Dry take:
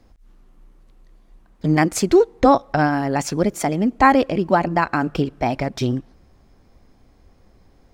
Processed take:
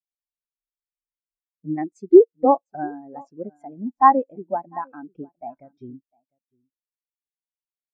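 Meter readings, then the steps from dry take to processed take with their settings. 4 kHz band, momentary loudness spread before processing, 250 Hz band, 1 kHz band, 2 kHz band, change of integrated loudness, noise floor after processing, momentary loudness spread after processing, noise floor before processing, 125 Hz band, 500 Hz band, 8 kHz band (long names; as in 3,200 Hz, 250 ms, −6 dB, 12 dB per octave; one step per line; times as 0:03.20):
below −40 dB, 9 LU, −5.0 dB, −1.5 dB, −15.5 dB, +0.5 dB, below −85 dBFS, 23 LU, −55 dBFS, −19.5 dB, −0.5 dB, below −30 dB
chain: low-shelf EQ 230 Hz −8 dB
single-tap delay 702 ms −12.5 dB
every bin expanded away from the loudest bin 2.5 to 1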